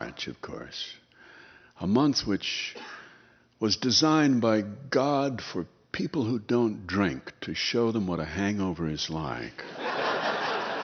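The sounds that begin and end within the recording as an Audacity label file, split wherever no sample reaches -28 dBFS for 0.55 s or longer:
1.820000	2.680000	sound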